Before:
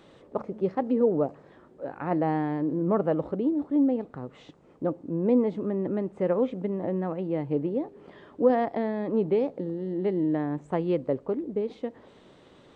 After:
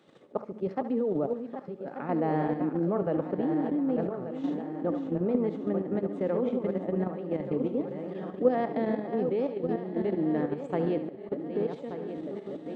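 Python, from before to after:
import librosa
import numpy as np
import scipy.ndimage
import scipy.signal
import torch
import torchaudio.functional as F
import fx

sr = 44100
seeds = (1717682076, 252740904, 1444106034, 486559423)

y = fx.reverse_delay_fb(x, sr, ms=591, feedback_pct=73, wet_db=-7.5)
y = scipy.signal.sosfilt(scipy.signal.butter(4, 130.0, 'highpass', fs=sr, output='sos'), y)
y = fx.notch(y, sr, hz=1000.0, q=12.0)
y = fx.level_steps(y, sr, step_db=9)
y = fx.auto_swell(y, sr, attack_ms=253.0, at=(10.8, 11.32))
y = fx.echo_thinned(y, sr, ms=71, feedback_pct=46, hz=420.0, wet_db=-12)
y = fx.sustainer(y, sr, db_per_s=51.0, at=(3.48, 5.16))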